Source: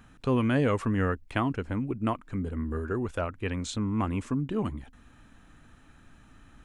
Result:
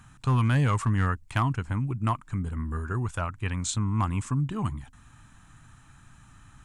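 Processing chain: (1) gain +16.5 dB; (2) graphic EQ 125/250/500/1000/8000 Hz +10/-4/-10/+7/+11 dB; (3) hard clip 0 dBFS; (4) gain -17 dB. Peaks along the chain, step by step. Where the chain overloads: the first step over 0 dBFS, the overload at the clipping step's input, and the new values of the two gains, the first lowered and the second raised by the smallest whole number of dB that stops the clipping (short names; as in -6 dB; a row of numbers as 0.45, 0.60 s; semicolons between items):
+3.0, +5.5, 0.0, -17.0 dBFS; step 1, 5.5 dB; step 1 +10.5 dB, step 4 -11 dB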